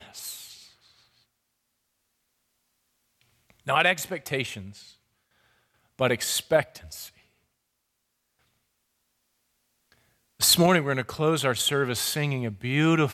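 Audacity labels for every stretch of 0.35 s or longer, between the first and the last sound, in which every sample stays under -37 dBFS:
0.530000	3.670000	silence
4.810000	5.990000	silence
7.080000	10.400000	silence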